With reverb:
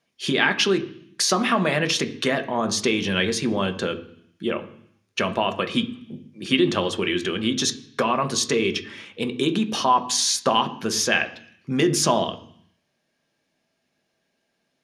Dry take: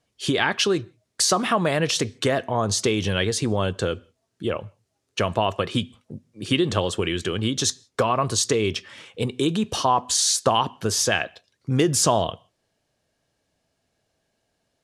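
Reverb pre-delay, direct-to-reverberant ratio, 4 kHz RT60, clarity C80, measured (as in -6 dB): 3 ms, 7.5 dB, 0.85 s, 18.0 dB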